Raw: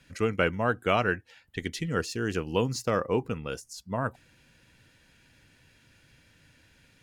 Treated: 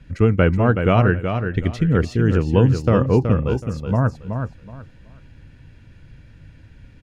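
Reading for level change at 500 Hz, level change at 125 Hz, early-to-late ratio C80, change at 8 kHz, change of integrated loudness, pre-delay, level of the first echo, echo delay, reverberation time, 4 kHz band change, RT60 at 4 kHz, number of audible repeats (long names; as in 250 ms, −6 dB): +8.5 dB, +17.5 dB, no reverb audible, can't be measured, +11.0 dB, no reverb audible, −7.0 dB, 374 ms, no reverb audible, +0.5 dB, no reverb audible, 3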